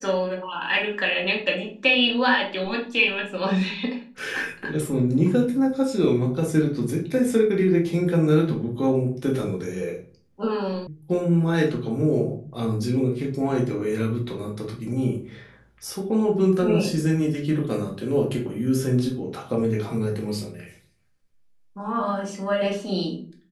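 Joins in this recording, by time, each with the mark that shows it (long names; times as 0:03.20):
0:10.87: cut off before it has died away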